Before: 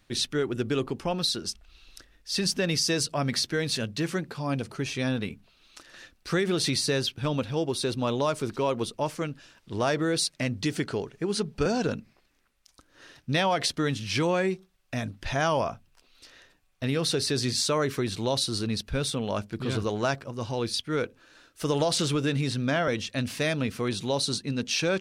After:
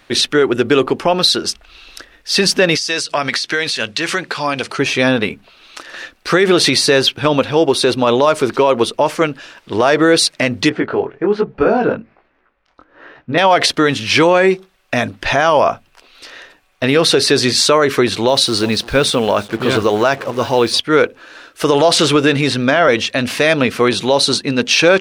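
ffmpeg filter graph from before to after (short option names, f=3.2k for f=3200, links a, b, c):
-filter_complex "[0:a]asettb=1/sr,asplit=3[a][b][c];[a]atrim=end=2.754[d];[b]atrim=start=2.75:end=4.79,asetpts=PTS-STARTPTS,afade=t=in:d=0.004:c=qsin,afade=t=out:st=2.036:d=0.004:c=qsin,tiltshelf=f=1.1k:g=-6.5,acompressor=threshold=-29dB:ratio=16:attack=3.2:release=140:knee=1:detection=peak,lowpass=9k[e];[c]atrim=start=4.786[f];[d][e]acrossfade=d=0.004:c1=hsin:c2=qsin[g];[g][f]acrossfade=d=0.004:c1=qsin:c2=hsin,asettb=1/sr,asplit=3[h][i][j];[h]atrim=end=10.694[k];[i]atrim=start=10.69:end=13.38,asetpts=PTS-STARTPTS,afade=t=in:d=0.004:c=qsin,afade=t=out:st=2.686:d=0.004:c=qsin,lowpass=1.7k,flanger=delay=15.5:depth=7.8:speed=1.2[l];[j]atrim=start=13.376[m];[k][l]acrossfade=d=0.004:c1=hsin:c2=qsin[n];[n][m]acrossfade=d=0.004:c1=qsin:c2=hsin,asettb=1/sr,asplit=3[o][p][q];[o]atrim=end=18.284[r];[p]atrim=start=18.28:end=20.8,asetpts=PTS-STARTPTS,afade=t=in:d=0.004:c=qsin,afade=t=out:st=2.516:d=0.004:c=qsin,aecho=1:1:348:0.0841,atrim=end_sample=111132,acrusher=bits=7:mix=0:aa=0.5[s];[q]atrim=start=20.796[t];[r][s]acrossfade=d=0.004:c1=hsin:c2=qsin[u];[u][t]acrossfade=d=0.004:c1=qsin:c2=hsin,bass=f=250:g=-13,treble=f=4k:g=-8,alimiter=level_in=20dB:limit=-1dB:release=50:level=0:latency=1,volume=-1dB"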